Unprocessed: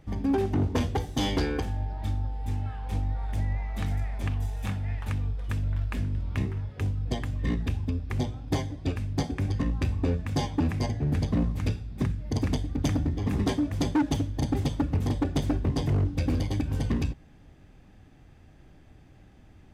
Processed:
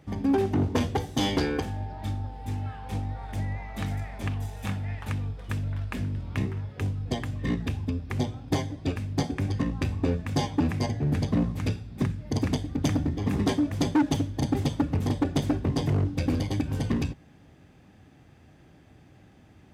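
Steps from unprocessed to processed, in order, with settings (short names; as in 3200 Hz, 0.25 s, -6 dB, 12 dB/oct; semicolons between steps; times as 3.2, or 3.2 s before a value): HPF 91 Hz 12 dB/oct; gain +2 dB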